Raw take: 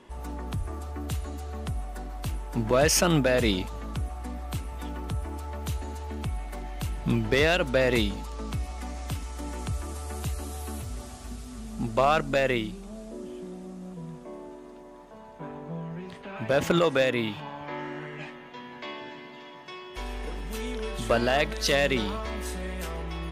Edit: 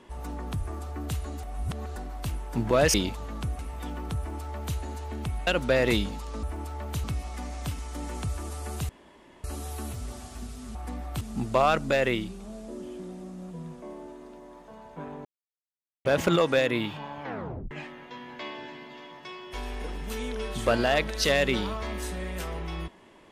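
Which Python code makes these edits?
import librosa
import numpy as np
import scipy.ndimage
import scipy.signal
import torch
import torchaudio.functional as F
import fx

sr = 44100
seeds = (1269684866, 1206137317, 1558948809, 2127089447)

y = fx.edit(x, sr, fx.reverse_span(start_s=1.43, length_s=0.53),
    fx.cut(start_s=2.94, length_s=0.53),
    fx.move(start_s=4.12, length_s=0.46, to_s=11.64),
    fx.duplicate(start_s=5.16, length_s=0.61, to_s=8.48),
    fx.cut(start_s=6.46, length_s=1.06),
    fx.insert_room_tone(at_s=10.33, length_s=0.55),
    fx.silence(start_s=15.68, length_s=0.8),
    fx.tape_stop(start_s=17.66, length_s=0.48), tone=tone)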